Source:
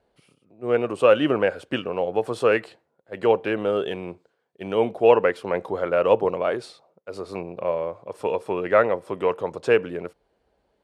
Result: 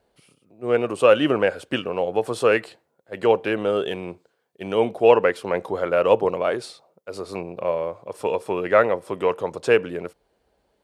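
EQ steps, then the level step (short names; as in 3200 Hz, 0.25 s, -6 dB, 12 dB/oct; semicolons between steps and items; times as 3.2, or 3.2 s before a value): high shelf 4800 Hz +7.5 dB; +1.0 dB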